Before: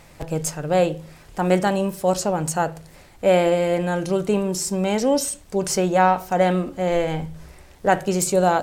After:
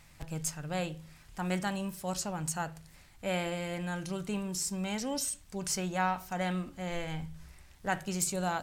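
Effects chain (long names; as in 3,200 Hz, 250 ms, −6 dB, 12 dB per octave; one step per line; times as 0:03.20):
parametric band 470 Hz −12.5 dB 1.7 octaves
level −7.5 dB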